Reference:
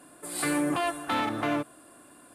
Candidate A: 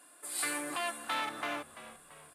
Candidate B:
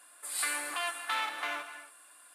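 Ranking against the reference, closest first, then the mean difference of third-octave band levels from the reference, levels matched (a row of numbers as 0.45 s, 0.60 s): A, B; 6.5 dB, 10.0 dB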